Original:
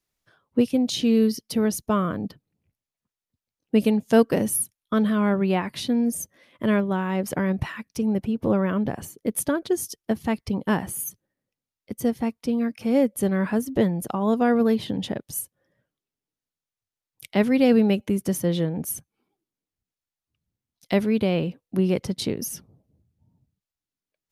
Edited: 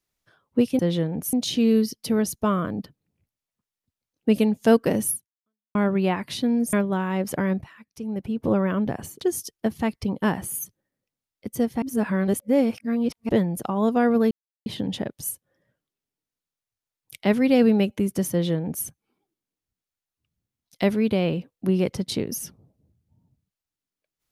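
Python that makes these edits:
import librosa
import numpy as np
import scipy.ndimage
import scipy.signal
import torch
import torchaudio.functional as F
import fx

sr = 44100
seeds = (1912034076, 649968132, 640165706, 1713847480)

y = fx.edit(x, sr, fx.fade_out_span(start_s=4.57, length_s=0.64, curve='exp'),
    fx.cut(start_s=6.19, length_s=0.53),
    fx.fade_in_from(start_s=7.61, length_s=0.82, curve='qua', floor_db=-14.5),
    fx.cut(start_s=9.2, length_s=0.46),
    fx.reverse_span(start_s=12.27, length_s=1.47),
    fx.insert_silence(at_s=14.76, length_s=0.35),
    fx.duplicate(start_s=18.41, length_s=0.54, to_s=0.79), tone=tone)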